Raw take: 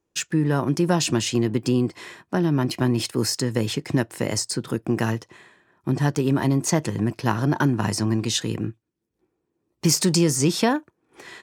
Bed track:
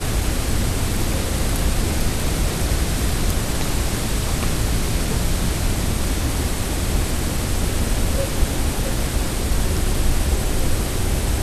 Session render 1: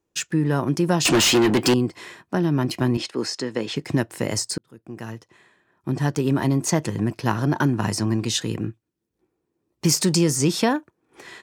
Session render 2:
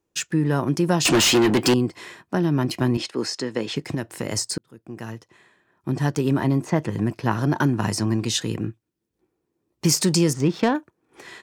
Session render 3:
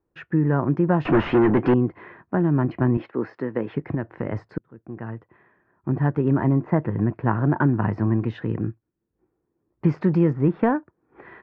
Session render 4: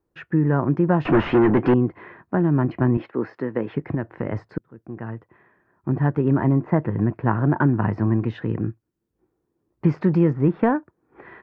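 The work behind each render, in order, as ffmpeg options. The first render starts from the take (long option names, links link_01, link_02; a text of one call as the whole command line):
ffmpeg -i in.wav -filter_complex "[0:a]asettb=1/sr,asplit=3[link_01][link_02][link_03];[link_01]atrim=end=1.054[link_04];[link_02]atrim=start=1.05:end=1.74,asetpts=PTS-STARTPTS,afade=type=in:duration=0.004:curve=qsin,afade=type=out:start_time=0.686:duration=0.004:curve=qsin,asplit=2[link_05][link_06];[link_06]highpass=frequency=720:poles=1,volume=28dB,asoftclip=type=tanh:threshold=-9.5dB[link_07];[link_05][link_07]amix=inputs=2:normalize=0,lowpass=frequency=6200:poles=1,volume=-6dB[link_08];[link_03]atrim=start=1.736[link_09];[link_04][link_08]acrossfade=duration=0.004:curve1=hsin:curve2=qsin[link_10];[link_10][link_09]acrossfade=duration=0.004:curve1=qsin:curve2=hsin,asettb=1/sr,asplit=3[link_11][link_12][link_13];[link_11]atrim=end=2.974[link_14];[link_12]atrim=start=2.97:end=3.76,asetpts=PTS-STARTPTS,afade=type=in:duration=0.004:curve=qsin,afade=type=out:start_time=0.786:duration=0.004:curve=qsin,highpass=260,lowpass=5200[link_15];[link_13]atrim=start=3.756[link_16];[link_14][link_15]acrossfade=duration=0.004:curve1=hsin:curve2=qsin[link_17];[link_17][link_16]acrossfade=duration=0.004:curve1=qsin:curve2=hsin,asplit=2[link_18][link_19];[link_18]atrim=end=4.58,asetpts=PTS-STARTPTS,afade=type=out:start_time=4.576:duration=0.004:curve=hsin[link_20];[link_19]atrim=start=4.58,asetpts=PTS-STARTPTS,afade=type=in:duration=1.67[link_21];[link_20][link_21]concat=n=2:v=0:a=1" out.wav
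ffmpeg -i in.wav -filter_complex "[0:a]asettb=1/sr,asplit=3[link_01][link_02][link_03];[link_01]atrim=end=3.884[link_04];[link_02]atrim=start=3.88:end=4.37,asetpts=PTS-STARTPTS,afade=type=in:duration=0.004:curve=qsin,afade=type=out:start_time=0.486:duration=0.004:curve=qsin,acompressor=threshold=-21dB:ratio=6:attack=3.2:release=140:knee=1:detection=peak[link_05];[link_03]atrim=start=4.366[link_06];[link_04][link_05]acrossfade=duration=0.004:curve1=hsin:curve2=qsin[link_07];[link_07][link_06]acrossfade=duration=0.004:curve1=qsin:curve2=hsin,asettb=1/sr,asplit=3[link_08][link_09][link_10];[link_08]atrim=end=6.374[link_11];[link_09]atrim=start=6.37:end=7.32,asetpts=PTS-STARTPTS,afade=type=in:duration=0.004:curve=qsin,afade=type=out:start_time=0.946:duration=0.004:curve=qsin,acrossover=split=2800[link_12][link_13];[link_13]acompressor=threshold=-44dB:ratio=4:attack=1:release=60[link_14];[link_12][link_14]amix=inputs=2:normalize=0[link_15];[link_10]atrim=start=7.316[link_16];[link_11][link_15]acrossfade=duration=0.004:curve1=hsin:curve2=qsin[link_17];[link_17][link_16]acrossfade=duration=0.004:curve1=qsin:curve2=hsin,asettb=1/sr,asplit=3[link_18][link_19][link_20];[link_18]atrim=end=10.334[link_21];[link_19]atrim=start=10.33:end=10.75,asetpts=PTS-STARTPTS,afade=type=in:duration=0.004:curve=qsin,afade=type=out:start_time=0.416:duration=0.004:curve=qsin,adynamicsmooth=sensitivity=1:basefreq=1800[link_22];[link_20]atrim=start=10.746[link_23];[link_21][link_22]acrossfade=duration=0.004:curve1=hsin:curve2=qsin[link_24];[link_24][link_23]acrossfade=duration=0.004:curve1=qsin:curve2=hsin" out.wav
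ffmpeg -i in.wav -af "lowpass=frequency=1800:width=0.5412,lowpass=frequency=1800:width=1.3066,lowshelf=frequency=71:gain=8" out.wav
ffmpeg -i in.wav -af "volume=1dB" out.wav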